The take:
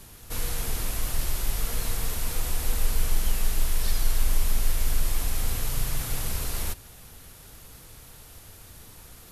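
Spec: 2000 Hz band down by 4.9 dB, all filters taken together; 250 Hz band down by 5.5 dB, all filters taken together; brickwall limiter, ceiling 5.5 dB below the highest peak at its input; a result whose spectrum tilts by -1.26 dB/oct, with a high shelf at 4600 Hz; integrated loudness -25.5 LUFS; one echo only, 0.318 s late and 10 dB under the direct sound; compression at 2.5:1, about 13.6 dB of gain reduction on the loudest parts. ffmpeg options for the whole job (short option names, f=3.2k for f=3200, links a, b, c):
-af "equalizer=f=250:t=o:g=-8.5,equalizer=f=2k:t=o:g=-7.5,highshelf=f=4.6k:g=6,acompressor=threshold=-37dB:ratio=2.5,alimiter=level_in=4.5dB:limit=-24dB:level=0:latency=1,volume=-4.5dB,aecho=1:1:318:0.316,volume=15dB"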